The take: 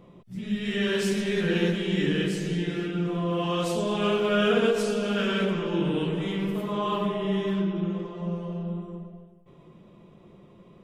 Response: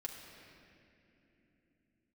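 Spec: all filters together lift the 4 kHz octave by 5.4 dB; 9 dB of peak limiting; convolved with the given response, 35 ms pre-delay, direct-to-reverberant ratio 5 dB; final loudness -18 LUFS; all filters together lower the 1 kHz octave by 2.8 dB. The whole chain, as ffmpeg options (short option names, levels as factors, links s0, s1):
-filter_complex "[0:a]equalizer=f=1000:t=o:g=-4,equalizer=f=4000:t=o:g=8,alimiter=limit=0.1:level=0:latency=1,asplit=2[s0][s1];[1:a]atrim=start_sample=2205,adelay=35[s2];[s1][s2]afir=irnorm=-1:irlink=0,volume=0.708[s3];[s0][s3]amix=inputs=2:normalize=0,volume=2.99"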